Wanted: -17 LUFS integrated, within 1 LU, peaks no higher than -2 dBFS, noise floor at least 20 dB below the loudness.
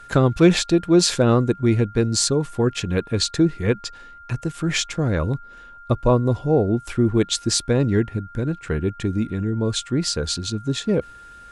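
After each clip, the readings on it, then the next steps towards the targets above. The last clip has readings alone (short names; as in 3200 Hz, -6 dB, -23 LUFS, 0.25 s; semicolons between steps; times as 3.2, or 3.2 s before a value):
steady tone 1400 Hz; tone level -41 dBFS; loudness -21.0 LUFS; peak -2.5 dBFS; loudness target -17.0 LUFS
-> notch 1400 Hz, Q 30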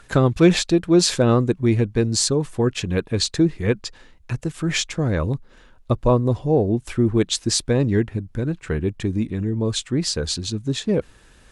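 steady tone none; loudness -21.0 LUFS; peak -2.5 dBFS; loudness target -17.0 LUFS
-> gain +4 dB; limiter -2 dBFS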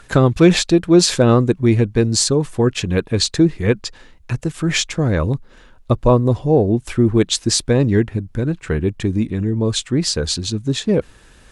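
loudness -17.0 LUFS; peak -2.0 dBFS; noise floor -47 dBFS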